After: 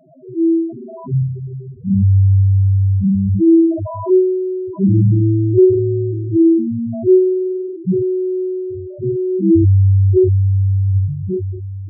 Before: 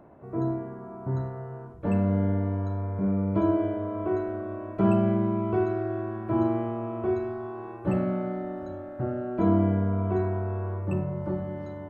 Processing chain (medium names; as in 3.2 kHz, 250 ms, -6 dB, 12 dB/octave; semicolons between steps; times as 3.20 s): gated-style reverb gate 100 ms flat, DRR -4 dB; loudest bins only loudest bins 2; trim +9 dB